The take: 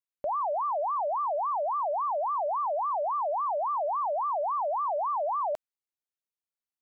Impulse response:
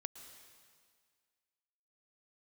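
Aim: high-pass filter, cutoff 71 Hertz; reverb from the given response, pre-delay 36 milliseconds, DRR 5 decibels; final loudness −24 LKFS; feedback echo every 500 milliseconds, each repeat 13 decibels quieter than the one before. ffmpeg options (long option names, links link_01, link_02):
-filter_complex "[0:a]highpass=71,aecho=1:1:500|1000|1500:0.224|0.0493|0.0108,asplit=2[link_01][link_02];[1:a]atrim=start_sample=2205,adelay=36[link_03];[link_02][link_03]afir=irnorm=-1:irlink=0,volume=-2dB[link_04];[link_01][link_04]amix=inputs=2:normalize=0,volume=4dB"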